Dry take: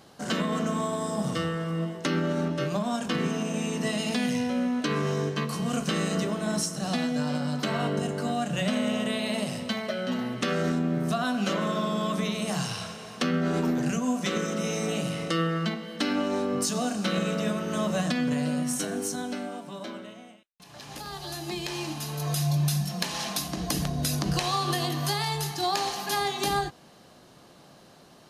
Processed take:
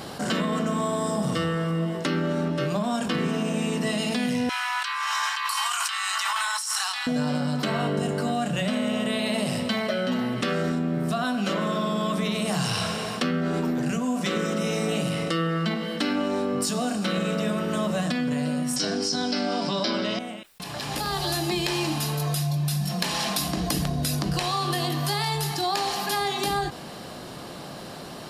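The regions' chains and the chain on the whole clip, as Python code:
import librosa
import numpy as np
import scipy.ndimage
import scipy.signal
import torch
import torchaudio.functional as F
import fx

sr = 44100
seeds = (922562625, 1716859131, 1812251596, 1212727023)

y = fx.chain(x, sr, fx.steep_highpass(hz=850.0, slope=72),
    fx.over_compress(threshold_db=-41.0, ratio=-1.0), at=(4.49, 7.07))
y = fx.chain(y, sr, fx.lowpass_res(hz=5000.0, q=10.0),
    fx.env_flatten(amount_pct=50), at=(18.76, 20.19))
y = fx.rider(y, sr, range_db=10, speed_s=0.5)
y = fx.notch(y, sr, hz=6300.0, q=9.0)
y = fx.env_flatten(y, sr, amount_pct=50)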